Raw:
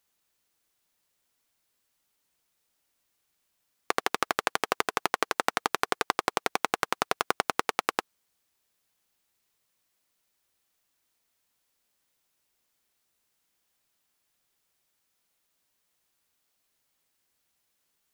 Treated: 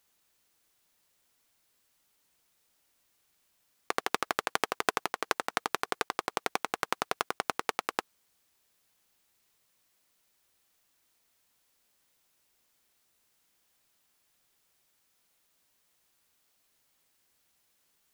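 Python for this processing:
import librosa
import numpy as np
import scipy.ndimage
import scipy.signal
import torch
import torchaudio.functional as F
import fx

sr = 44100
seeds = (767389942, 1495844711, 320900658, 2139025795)

y = fx.over_compress(x, sr, threshold_db=-28.0, ratio=-0.5)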